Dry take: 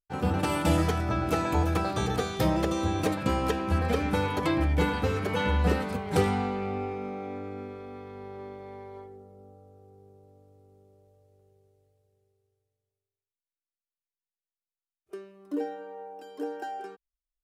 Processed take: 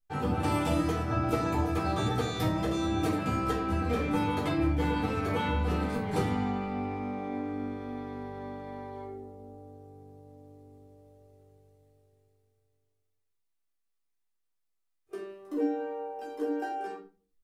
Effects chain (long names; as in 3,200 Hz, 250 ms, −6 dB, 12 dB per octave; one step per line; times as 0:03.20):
downward compressor 2 to 1, threshold −38 dBFS, peak gain reduction 11 dB
convolution reverb RT60 0.40 s, pre-delay 3 ms, DRR −4.5 dB
level −2.5 dB